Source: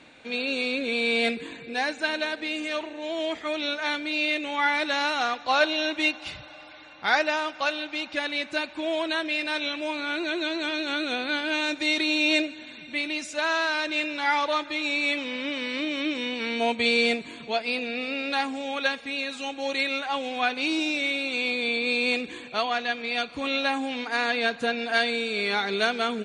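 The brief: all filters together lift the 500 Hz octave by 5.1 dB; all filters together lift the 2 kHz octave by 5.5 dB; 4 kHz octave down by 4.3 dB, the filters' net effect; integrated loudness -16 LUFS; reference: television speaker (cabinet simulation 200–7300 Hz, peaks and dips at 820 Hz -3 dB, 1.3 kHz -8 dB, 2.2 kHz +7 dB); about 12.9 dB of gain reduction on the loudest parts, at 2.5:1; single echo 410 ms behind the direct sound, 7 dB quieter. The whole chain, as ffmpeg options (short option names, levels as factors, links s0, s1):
-af "equalizer=f=500:t=o:g=6.5,equalizer=f=2000:t=o:g=5.5,equalizer=f=4000:t=o:g=-8,acompressor=threshold=0.0224:ratio=2.5,highpass=f=200:w=0.5412,highpass=f=200:w=1.3066,equalizer=f=820:t=q:w=4:g=-3,equalizer=f=1300:t=q:w=4:g=-8,equalizer=f=2200:t=q:w=4:g=7,lowpass=f=7300:w=0.5412,lowpass=f=7300:w=1.3066,aecho=1:1:410:0.447,volume=4.73"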